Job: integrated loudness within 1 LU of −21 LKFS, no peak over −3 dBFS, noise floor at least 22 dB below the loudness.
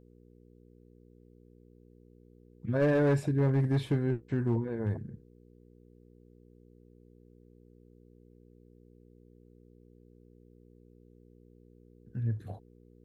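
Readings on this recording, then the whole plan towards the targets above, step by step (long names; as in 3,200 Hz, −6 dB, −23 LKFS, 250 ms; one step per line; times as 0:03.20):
share of clipped samples 0.5%; peaks flattened at −21.0 dBFS; mains hum 60 Hz; hum harmonics up to 480 Hz; level of the hum −57 dBFS; integrated loudness −30.0 LKFS; sample peak −21.0 dBFS; target loudness −21.0 LKFS
→ clipped peaks rebuilt −21 dBFS
hum removal 60 Hz, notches 8
level +9 dB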